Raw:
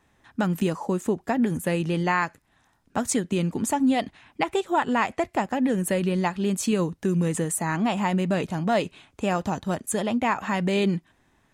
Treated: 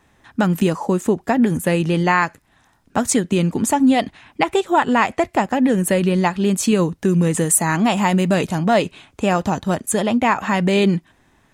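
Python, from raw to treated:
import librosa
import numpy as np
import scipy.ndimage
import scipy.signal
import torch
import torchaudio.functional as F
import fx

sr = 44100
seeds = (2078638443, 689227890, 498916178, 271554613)

y = fx.high_shelf(x, sr, hz=4900.0, db=7.0, at=(7.38, 8.58))
y = y * librosa.db_to_amplitude(7.0)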